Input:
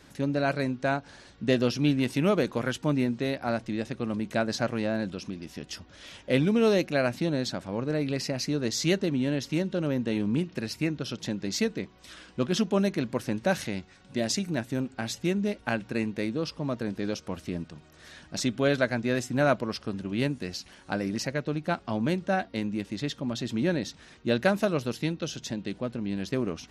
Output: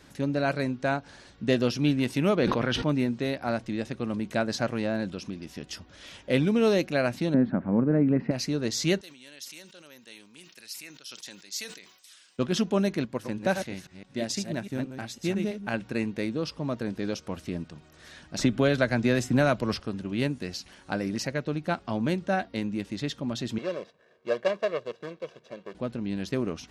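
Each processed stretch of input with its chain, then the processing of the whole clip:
2.35–2.89 s: Savitzky-Golay filter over 15 samples + decay stretcher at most 27 dB/s
7.34–8.31 s: low-pass 1.8 kHz 24 dB/octave + peaking EQ 220 Hz +12 dB 1.1 oct + tape noise reduction on one side only encoder only
9.01–12.39 s: differentiator + decay stretcher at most 71 dB/s
13.05–15.74 s: chunks repeated in reverse 164 ms, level -5.5 dB + upward expansion, over -35 dBFS
18.39–19.80 s: bass shelf 75 Hz +11.5 dB + three bands compressed up and down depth 100%
23.58–25.75 s: median filter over 41 samples + band-pass 410–4800 Hz + comb 1.8 ms, depth 72%
whole clip: none

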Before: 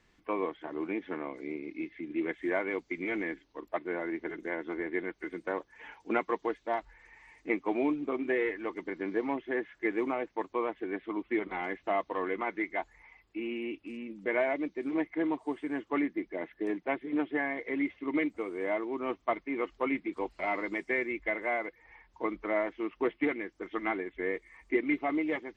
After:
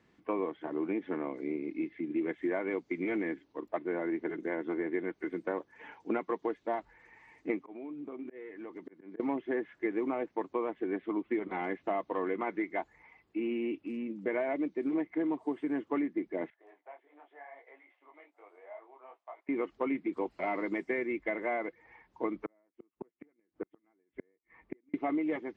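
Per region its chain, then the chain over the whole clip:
7.59–9.20 s: slow attack 500 ms + compression 4:1, threshold -44 dBFS
16.50–19.49 s: compression 2.5:1, threshold -37 dBFS + ladder high-pass 620 Hz, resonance 50% + detune thickener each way 35 cents
22.45–24.94 s: distance through air 340 m + inverted gate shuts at -29 dBFS, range -42 dB
whole clip: high-pass 160 Hz 12 dB/octave; tilt EQ -2.5 dB/octave; compression, threshold -28 dBFS

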